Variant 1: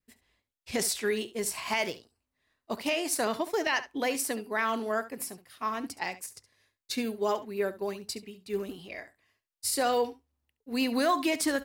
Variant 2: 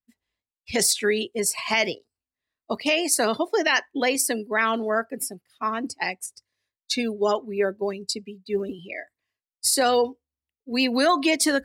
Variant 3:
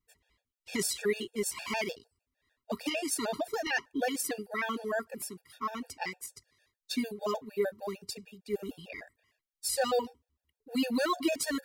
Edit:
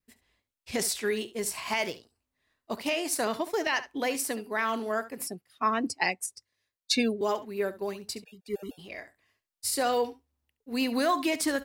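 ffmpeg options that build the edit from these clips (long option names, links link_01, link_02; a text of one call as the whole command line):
ffmpeg -i take0.wav -i take1.wav -i take2.wav -filter_complex "[0:a]asplit=3[link_01][link_02][link_03];[link_01]atrim=end=5.272[link_04];[1:a]atrim=start=5.268:end=7.212[link_05];[link_02]atrim=start=7.208:end=8.242[link_06];[2:a]atrim=start=8.238:end=8.792[link_07];[link_03]atrim=start=8.788[link_08];[link_04][link_05]acrossfade=duration=0.004:curve1=hsin:curve2=hsin[link_09];[link_09][link_06]acrossfade=duration=0.004:curve1=hsin:curve2=hsin[link_10];[link_10][link_07]acrossfade=duration=0.004:curve1=hsin:curve2=hsin[link_11];[link_11][link_08]acrossfade=duration=0.004:curve1=hsin:curve2=hsin" out.wav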